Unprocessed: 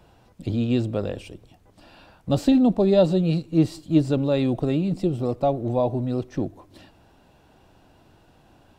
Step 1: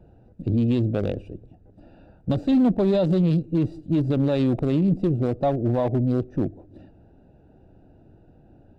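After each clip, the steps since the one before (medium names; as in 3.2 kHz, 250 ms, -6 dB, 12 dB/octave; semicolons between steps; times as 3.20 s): local Wiener filter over 41 samples; peak limiter -18.5 dBFS, peak gain reduction 11.5 dB; trim +5 dB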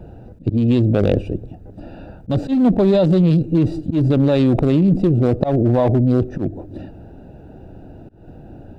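slow attack 199 ms; in parallel at -2.5 dB: compressor with a negative ratio -28 dBFS, ratio -0.5; on the sum: trim +5.5 dB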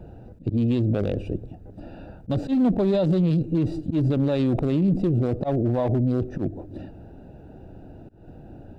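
peak limiter -10 dBFS, peak gain reduction 8 dB; trim -4.5 dB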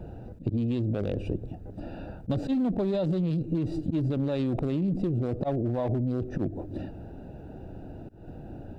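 compression, threshold -26 dBFS, peak gain reduction 9 dB; trim +1.5 dB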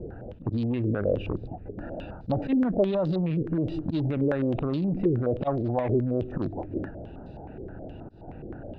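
hard clipper -20 dBFS, distortion -29 dB; step-sequenced low-pass 9.5 Hz 430–4300 Hz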